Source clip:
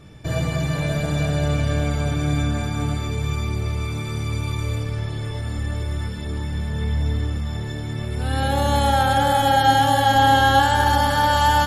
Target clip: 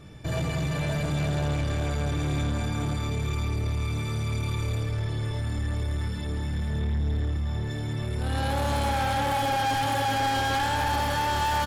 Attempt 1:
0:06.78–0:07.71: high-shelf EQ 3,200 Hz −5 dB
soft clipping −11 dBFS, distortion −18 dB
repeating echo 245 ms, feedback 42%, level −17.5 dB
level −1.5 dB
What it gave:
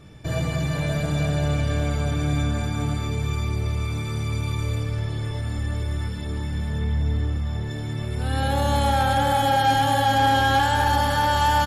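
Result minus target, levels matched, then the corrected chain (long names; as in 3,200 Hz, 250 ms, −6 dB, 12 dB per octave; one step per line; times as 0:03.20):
soft clipping: distortion −11 dB
0:06.78–0:07.71: high-shelf EQ 3,200 Hz −5 dB
soft clipping −22 dBFS, distortion −8 dB
repeating echo 245 ms, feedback 42%, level −17.5 dB
level −1.5 dB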